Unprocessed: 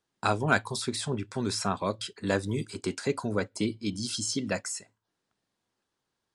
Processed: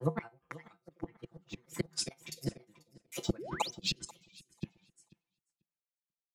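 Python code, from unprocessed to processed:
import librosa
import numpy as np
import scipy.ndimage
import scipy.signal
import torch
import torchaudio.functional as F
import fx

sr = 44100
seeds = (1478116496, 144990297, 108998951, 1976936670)

y = fx.tremolo_shape(x, sr, shape='triangle', hz=1.0, depth_pct=95)
y = fx.granulator(y, sr, seeds[0], grain_ms=100.0, per_s=20.0, spray_ms=472.0, spread_st=7)
y = fx.dynamic_eq(y, sr, hz=2300.0, q=2.7, threshold_db=-55.0, ratio=4.0, max_db=6)
y = fx.comb_fb(y, sr, f0_hz=53.0, decay_s=0.27, harmonics='odd', damping=0.0, mix_pct=60)
y = fx.gate_flip(y, sr, shuts_db=-32.0, range_db=-30)
y = y + 0.79 * np.pad(y, (int(5.9 * sr / 1000.0), 0))[:len(y)]
y = fx.echo_feedback(y, sr, ms=489, feedback_pct=34, wet_db=-12)
y = fx.spec_paint(y, sr, seeds[1], shape='rise', start_s=3.38, length_s=0.33, low_hz=280.0, high_hz=6400.0, level_db=-51.0)
y = fx.band_widen(y, sr, depth_pct=100)
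y = y * 10.0 ** (6.5 / 20.0)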